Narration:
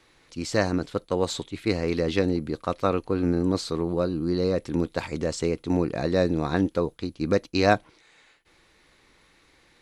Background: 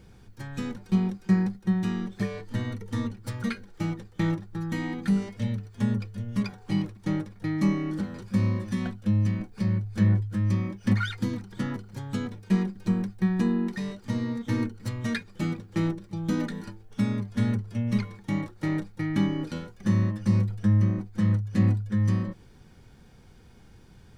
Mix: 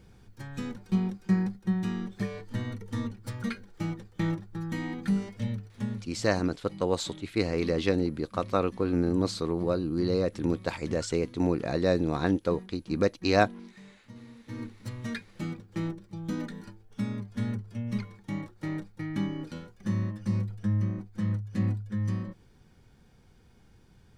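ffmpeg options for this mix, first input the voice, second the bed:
-filter_complex "[0:a]adelay=5700,volume=0.75[s0];[1:a]volume=3.16,afade=t=out:st=5.51:d=0.78:silence=0.158489,afade=t=in:st=14.39:d=0.47:silence=0.223872[s1];[s0][s1]amix=inputs=2:normalize=0"

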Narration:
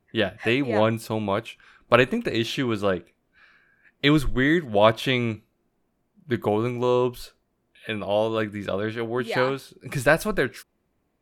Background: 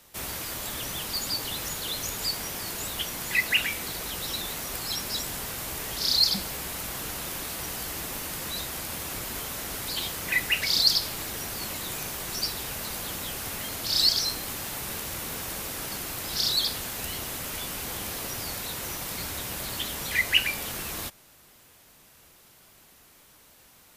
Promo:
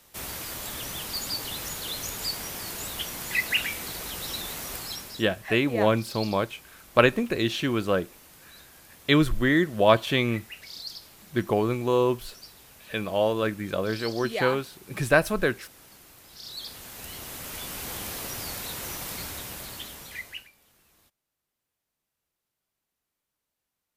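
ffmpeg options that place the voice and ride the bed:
-filter_complex "[0:a]adelay=5050,volume=0.891[s0];[1:a]volume=5.62,afade=t=out:st=4.72:d=0.55:silence=0.158489,afade=t=in:st=16.41:d=1.49:silence=0.149624,afade=t=out:st=19.08:d=1.42:silence=0.0398107[s1];[s0][s1]amix=inputs=2:normalize=0"

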